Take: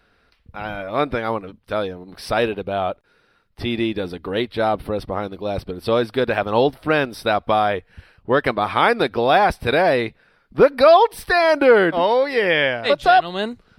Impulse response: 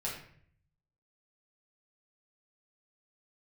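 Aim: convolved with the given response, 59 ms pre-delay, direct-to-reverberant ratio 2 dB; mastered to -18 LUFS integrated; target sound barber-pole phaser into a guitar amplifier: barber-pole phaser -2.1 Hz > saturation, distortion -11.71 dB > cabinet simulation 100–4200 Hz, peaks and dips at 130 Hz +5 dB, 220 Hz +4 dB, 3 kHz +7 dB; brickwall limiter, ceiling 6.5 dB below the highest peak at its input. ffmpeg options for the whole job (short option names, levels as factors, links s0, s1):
-filter_complex "[0:a]alimiter=limit=0.376:level=0:latency=1,asplit=2[s0][s1];[1:a]atrim=start_sample=2205,adelay=59[s2];[s1][s2]afir=irnorm=-1:irlink=0,volume=0.562[s3];[s0][s3]amix=inputs=2:normalize=0,asplit=2[s4][s5];[s5]afreqshift=-2.1[s6];[s4][s6]amix=inputs=2:normalize=1,asoftclip=threshold=0.141,highpass=100,equalizer=f=130:t=q:w=4:g=5,equalizer=f=220:t=q:w=4:g=4,equalizer=f=3000:t=q:w=4:g=7,lowpass=f=4200:w=0.5412,lowpass=f=4200:w=1.3066,volume=2"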